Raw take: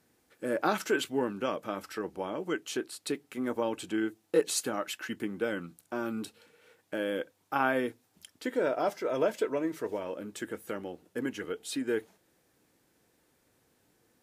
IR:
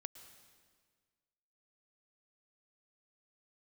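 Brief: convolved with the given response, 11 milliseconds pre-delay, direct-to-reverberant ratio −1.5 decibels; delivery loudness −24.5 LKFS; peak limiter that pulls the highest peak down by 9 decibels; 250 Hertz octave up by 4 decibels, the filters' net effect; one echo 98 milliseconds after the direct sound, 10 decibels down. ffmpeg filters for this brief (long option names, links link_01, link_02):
-filter_complex "[0:a]equalizer=frequency=250:width_type=o:gain=5,alimiter=limit=-20.5dB:level=0:latency=1,aecho=1:1:98:0.316,asplit=2[link_01][link_02];[1:a]atrim=start_sample=2205,adelay=11[link_03];[link_02][link_03]afir=irnorm=-1:irlink=0,volume=6dB[link_04];[link_01][link_04]amix=inputs=2:normalize=0,volume=5dB"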